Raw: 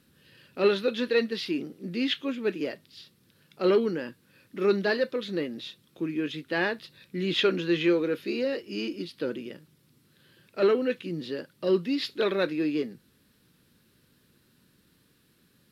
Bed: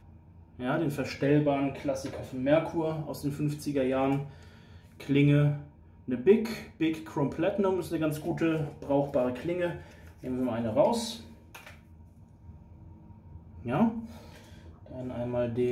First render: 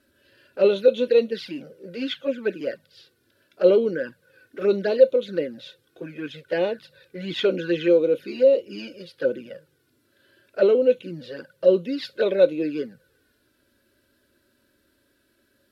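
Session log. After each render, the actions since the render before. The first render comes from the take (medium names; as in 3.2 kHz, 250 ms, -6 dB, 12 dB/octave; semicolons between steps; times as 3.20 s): small resonant body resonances 540/1500 Hz, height 16 dB, ringing for 35 ms; touch-sensitive flanger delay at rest 3.1 ms, full sweep at -16 dBFS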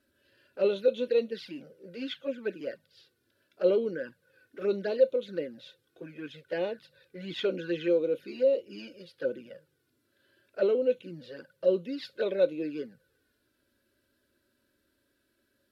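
trim -8 dB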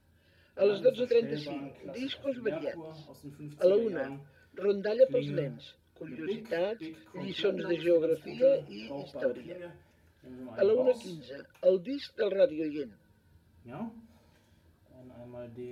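add bed -14.5 dB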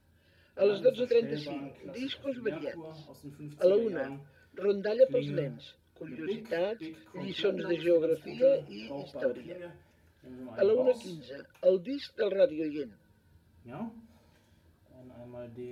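1.75–2.84 s: peaking EQ 670 Hz -9.5 dB 0.3 oct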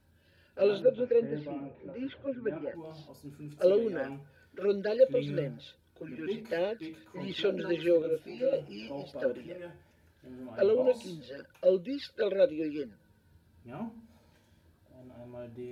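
0.82–2.75 s: low-pass 1.6 kHz; 8.02–8.53 s: detune thickener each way 15 cents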